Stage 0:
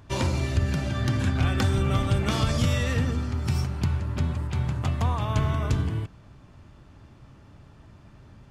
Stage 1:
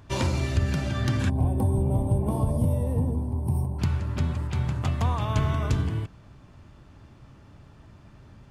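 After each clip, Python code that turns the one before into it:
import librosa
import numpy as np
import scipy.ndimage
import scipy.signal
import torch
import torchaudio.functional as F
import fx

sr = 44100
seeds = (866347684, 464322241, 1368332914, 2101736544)

y = fx.spec_box(x, sr, start_s=1.3, length_s=2.49, low_hz=1100.0, high_hz=8200.0, gain_db=-26)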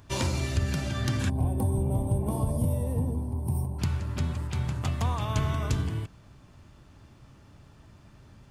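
y = fx.high_shelf(x, sr, hz=4400.0, db=8.0)
y = y * librosa.db_to_amplitude(-3.0)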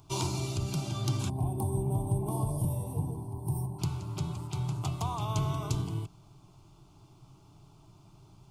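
y = fx.fixed_phaser(x, sr, hz=350.0, stages=8)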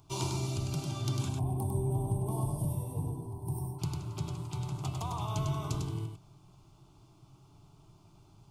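y = x + 10.0 ** (-4.5 / 20.0) * np.pad(x, (int(100 * sr / 1000.0), 0))[:len(x)]
y = y * librosa.db_to_amplitude(-3.5)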